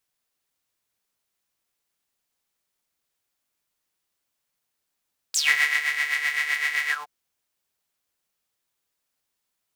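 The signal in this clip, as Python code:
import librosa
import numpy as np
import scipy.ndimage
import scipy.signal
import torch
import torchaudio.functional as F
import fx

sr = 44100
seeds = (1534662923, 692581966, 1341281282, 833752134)

y = fx.sub_patch_tremolo(sr, seeds[0], note=50, wave='saw', wave2='square', interval_st=0, detune_cents=29, level2_db=-1, sub_db=-15.0, noise_db=-30.0, kind='highpass', cutoff_hz=760.0, q=11.0, env_oct=3.5, env_decay_s=0.14, env_sustain_pct=40, attack_ms=3.8, decay_s=0.49, sustain_db=-7.5, release_s=0.16, note_s=1.56, lfo_hz=7.8, tremolo_db=8.5)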